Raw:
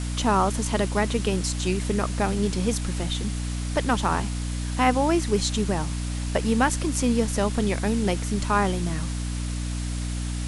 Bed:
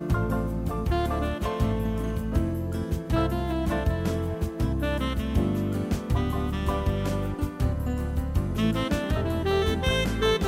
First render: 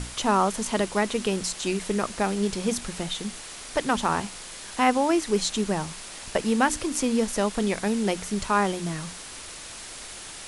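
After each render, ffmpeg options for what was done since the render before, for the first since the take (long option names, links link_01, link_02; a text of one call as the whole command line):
ffmpeg -i in.wav -af "bandreject=frequency=60:width_type=h:width=6,bandreject=frequency=120:width_type=h:width=6,bandreject=frequency=180:width_type=h:width=6,bandreject=frequency=240:width_type=h:width=6,bandreject=frequency=300:width_type=h:width=6" out.wav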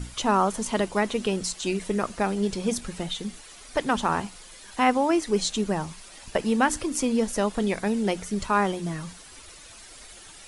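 ffmpeg -i in.wav -af "afftdn=noise_reduction=10:noise_floor=-40" out.wav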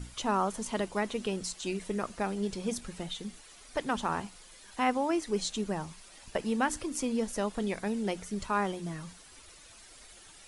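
ffmpeg -i in.wav -af "volume=-7dB" out.wav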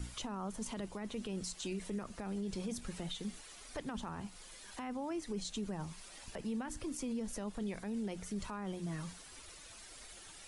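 ffmpeg -i in.wav -filter_complex "[0:a]acrossover=split=220[link_01][link_02];[link_02]acompressor=threshold=-41dB:ratio=2.5[link_03];[link_01][link_03]amix=inputs=2:normalize=0,alimiter=level_in=8dB:limit=-24dB:level=0:latency=1:release=22,volume=-8dB" out.wav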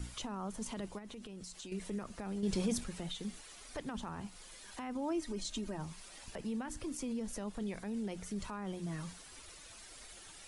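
ffmpeg -i in.wav -filter_complex "[0:a]asettb=1/sr,asplit=3[link_01][link_02][link_03];[link_01]atrim=end=0.984[link_04];[link_02]atrim=start=0.98:end=1.72,asetpts=PTS-STARTPTS,afade=type=in:duration=0.004:curve=qsin,afade=type=out:start_time=0.736:duration=0.004:curve=qsin,acompressor=threshold=-44dB:ratio=10:attack=3.2:release=140:knee=1:detection=peak[link_05];[link_03]atrim=start=1.716[link_06];[link_04][link_05]acrossfade=duration=0.004:curve1=hsin:curve2=qsin[link_07];[link_07][link_06]acrossfade=duration=0.004:curve1=qsin:curve2=hsin,asettb=1/sr,asplit=3[link_08][link_09][link_10];[link_08]atrim=end=4.954[link_11];[link_09]atrim=start=4.95:end=5.78,asetpts=PTS-STARTPTS,afade=type=in:duration=0.004:curve=qsin,afade=type=out:start_time=0.826:duration=0.004:curve=qsin,aecho=1:1:3.2:0.64,atrim=end_sample=36603[link_12];[link_10]atrim=start=5.776[link_13];[link_11][link_12]acrossfade=duration=0.004:curve1=hsin:curve2=qsin[link_14];[link_14][link_13]acrossfade=duration=0.004:curve1=qsin:curve2=hsin,asplit=3[link_15][link_16][link_17];[link_15]atrim=end=2.432[link_18];[link_16]atrim=start=2.428:end=2.842,asetpts=PTS-STARTPTS,volume=6.5dB[link_19];[link_17]atrim=start=2.838[link_20];[link_18][link_19]acrossfade=duration=0.004:curve1=hsin:curve2=hsin[link_21];[link_21][link_20]acrossfade=duration=0.004:curve1=hsin:curve2=hsin" out.wav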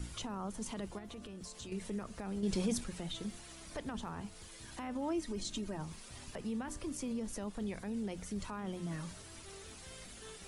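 ffmpeg -i in.wav -i bed.wav -filter_complex "[1:a]volume=-30dB[link_01];[0:a][link_01]amix=inputs=2:normalize=0" out.wav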